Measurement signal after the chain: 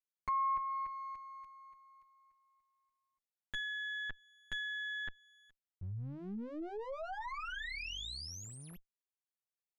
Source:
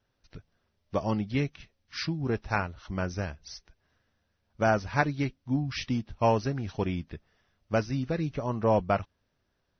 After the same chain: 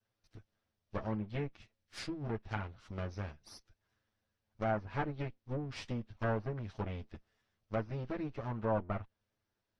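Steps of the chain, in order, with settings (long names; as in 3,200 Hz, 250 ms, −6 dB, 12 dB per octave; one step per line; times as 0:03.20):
lower of the sound and its delayed copy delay 9.2 ms
treble cut that deepens with the level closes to 1,700 Hz, closed at −24.5 dBFS
level −8 dB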